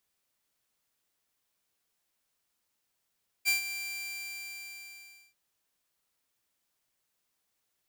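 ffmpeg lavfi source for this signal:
-f lavfi -i "aevalsrc='0.1*(2*mod(2360*t,1)-1)':d=1.89:s=44100,afade=t=in:d=0.035,afade=t=out:st=0.035:d=0.124:silence=0.251,afade=t=out:st=0.25:d=1.64"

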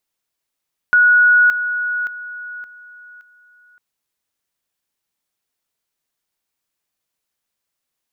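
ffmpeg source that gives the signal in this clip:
-f lavfi -i "aevalsrc='pow(10,(-8-10*floor(t/0.57))/20)*sin(2*PI*1460*t)':d=2.85:s=44100"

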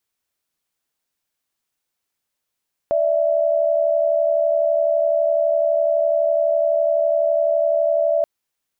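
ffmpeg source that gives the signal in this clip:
-f lavfi -i "aevalsrc='0.126*(sin(2*PI*587.33*t)+sin(2*PI*659.26*t))':d=5.33:s=44100"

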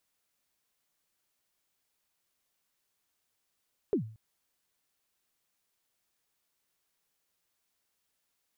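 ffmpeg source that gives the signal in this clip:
-f lavfi -i "aevalsrc='0.0841*pow(10,-3*t/0.45)*sin(2*PI*(460*0.102/log(110/460)*(exp(log(110/460)*min(t,0.102)/0.102)-1)+110*max(t-0.102,0)))':d=0.23:s=44100"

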